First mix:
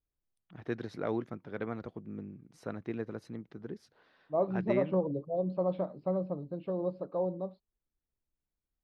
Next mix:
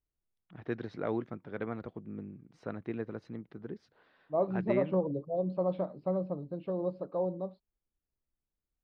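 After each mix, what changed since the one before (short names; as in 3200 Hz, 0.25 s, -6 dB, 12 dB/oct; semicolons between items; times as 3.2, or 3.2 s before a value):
first voice: add LPF 3900 Hz 12 dB/oct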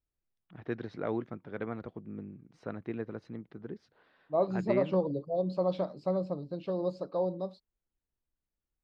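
second voice: remove air absorption 490 m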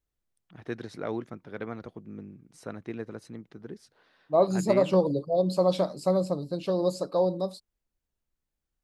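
second voice +5.5 dB; master: remove air absorption 250 m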